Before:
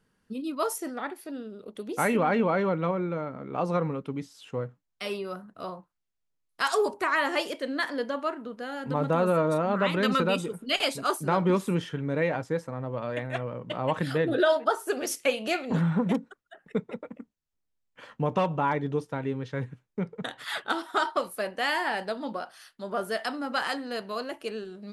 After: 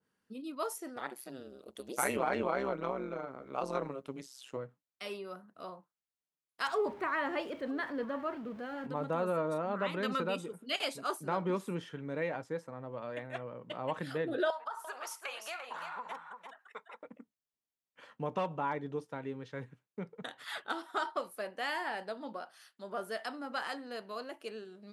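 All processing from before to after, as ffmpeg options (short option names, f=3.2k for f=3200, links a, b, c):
-filter_complex "[0:a]asettb=1/sr,asplit=3[a][b][c];[a]atrim=end=0.964[d];[b]atrim=start=0.96:end=4.57,asetpts=PTS-STARTPTS,afade=t=in:d=0.004:c=qsin,afade=t=out:st=3.606:d=0.004:c=qsin,bass=f=250:g=-5,treble=f=4k:g=8,acontrast=32,tremolo=f=130:d=0.919[e];[c]atrim=start=4.566[f];[d][e]acrossfade=d=0.004:c1=hsin:c2=qsin[g];[g][f]acrossfade=d=0.004:c1=qsin:c2=hsin,asettb=1/sr,asplit=3[h][i][j];[h]atrim=end=6.674[k];[i]atrim=start=6.67:end=8.87,asetpts=PTS-STARTPTS,afade=t=in:d=0.004:c=qsin,afade=t=out:st=2.196:d=0.004:c=qsin,aeval=exprs='val(0)+0.5*0.0106*sgn(val(0))':c=same,bass=f=250:g=10,treble=f=4k:g=-14,aecho=1:1:961:0.0944,atrim=end_sample=97020[l];[j]atrim=start=8.866[m];[k][l]acrossfade=d=0.004:c1=hsin:c2=qsin[n];[n][m]acrossfade=d=0.004:c1=qsin:c2=hsin,asettb=1/sr,asplit=3[o][p][q];[o]atrim=end=14.504[r];[p]atrim=start=14.5:end=17.03,asetpts=PTS-STARTPTS,afade=t=in:d=0.004:c=qsin,afade=t=out:st=2.526:d=0.004:c=qsin,highpass=f=1k:t=q:w=3.1,acompressor=threshold=-29dB:ratio=4:attack=3.2:release=140:knee=1:detection=peak,aecho=1:1:344:0.422,atrim=end_sample=111573[s];[q]atrim=start=17.026[t];[r][s]acrossfade=d=0.004:c1=hsin:c2=qsin[u];[u][t]acrossfade=d=0.004:c1=qsin:c2=hsin,highpass=f=220:p=1,adynamicequalizer=threshold=0.00891:dfrequency=1800:dqfactor=0.7:tfrequency=1800:tqfactor=0.7:attack=5:release=100:ratio=0.375:range=1.5:mode=cutabove:tftype=highshelf,volume=-7.5dB"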